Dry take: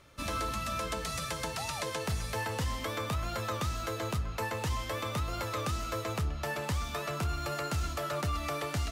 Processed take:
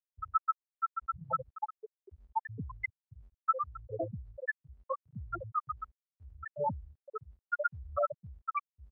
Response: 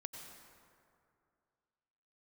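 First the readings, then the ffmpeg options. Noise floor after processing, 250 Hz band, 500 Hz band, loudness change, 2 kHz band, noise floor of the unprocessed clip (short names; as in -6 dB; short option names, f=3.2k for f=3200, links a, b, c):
under -85 dBFS, -11.0 dB, -3.5 dB, -3.0 dB, -3.5 dB, -39 dBFS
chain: -filter_complex "[0:a]acompressor=threshold=-33dB:ratio=12,aphaser=in_gain=1:out_gain=1:delay=2.7:decay=0.77:speed=0.75:type=sinusoidal,asplit=2[a][b];[b]aecho=0:1:496|992|1488|1984|2480:0.2|0.0978|0.0479|0.0235|0.0115[c];[a][c]amix=inputs=2:normalize=0,acontrast=44,equalizer=f=7.2k:w=2.8:g=4,aeval=exprs='0.355*sin(PI/2*1.78*val(0)/0.355)':c=same,afftfilt=real='re*gte(hypot(re,im),1)':imag='im*gte(hypot(re,im),1)':win_size=1024:overlap=0.75,highpass=f=1.4k:p=1,highshelf=f=3k:g=6.5,volume=-4dB" -ar 48000 -c:a libmp3lame -b:a 40k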